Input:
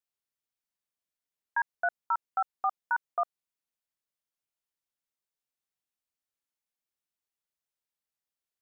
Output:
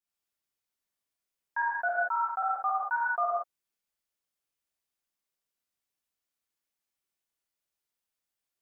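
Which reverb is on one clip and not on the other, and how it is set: non-linear reverb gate 0.21 s flat, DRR -7 dB; gain -4.5 dB

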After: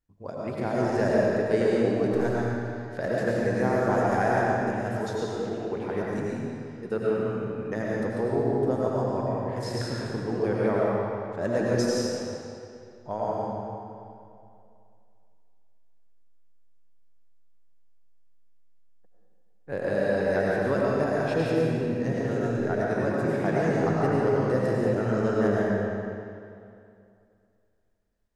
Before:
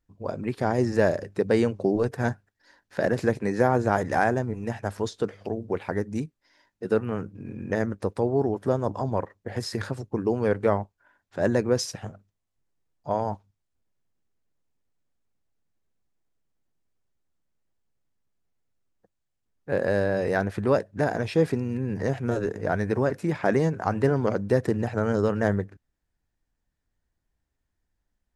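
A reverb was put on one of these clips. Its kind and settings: digital reverb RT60 2.5 s, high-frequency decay 0.85×, pre-delay 60 ms, DRR -5.5 dB; gain -6.5 dB

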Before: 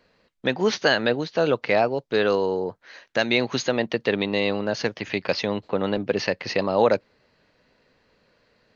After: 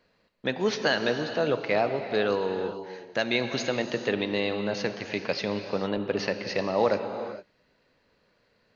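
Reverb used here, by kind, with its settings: non-linear reverb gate 0.48 s flat, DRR 7 dB; gain -5 dB

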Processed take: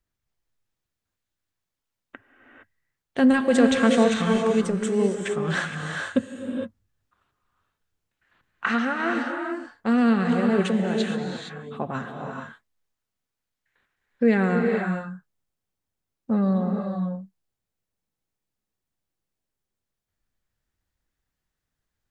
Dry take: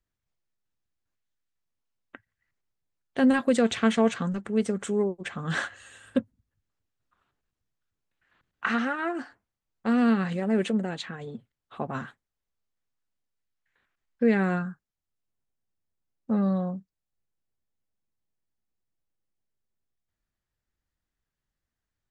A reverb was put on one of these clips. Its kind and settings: non-linear reverb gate 0.49 s rising, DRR 2.5 dB; gain +2.5 dB

